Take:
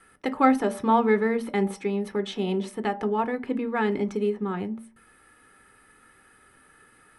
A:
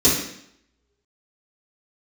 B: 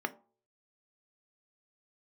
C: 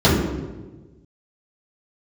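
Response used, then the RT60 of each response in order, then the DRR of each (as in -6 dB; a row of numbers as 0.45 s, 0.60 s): B; 0.70 s, 0.45 s, 1.3 s; -11.5 dB, 8.0 dB, -11.0 dB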